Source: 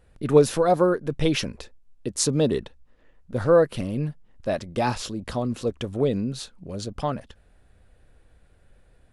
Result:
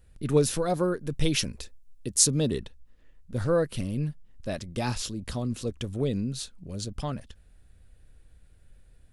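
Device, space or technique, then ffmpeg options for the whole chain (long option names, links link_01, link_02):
smiley-face EQ: -filter_complex "[0:a]asettb=1/sr,asplit=3[link_01][link_02][link_03];[link_01]atrim=end=1.004[link_04];[link_02]atrim=start=1:end=2.32,asetpts=PTS-STARTPTS,afade=type=in:duration=0.004:curve=qsin,afade=type=out:start_time=1.316:duration=0.004:curve=qsin,highshelf=frequency=6400:gain=5.5[link_05];[link_03]atrim=start=2.316[link_06];[link_04][link_05]acrossfade=duration=0.004:curve1=hsin:curve2=qsin[link_07];[link_07][link_06]acrossfade=duration=0.004:curve1=qsin:curve2=hsin,lowshelf=frequency=110:gain=6,equalizer=frequency=760:width_type=o:width=2.2:gain=-6.5,highshelf=frequency=5100:gain=7,volume=-3dB"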